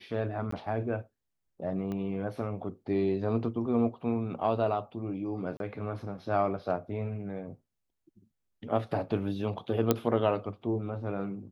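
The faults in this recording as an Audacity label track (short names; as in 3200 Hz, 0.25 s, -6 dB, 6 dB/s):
0.510000	0.520000	gap 14 ms
1.920000	1.920000	pop -25 dBFS
5.570000	5.600000	gap 32 ms
9.910000	9.910000	pop -9 dBFS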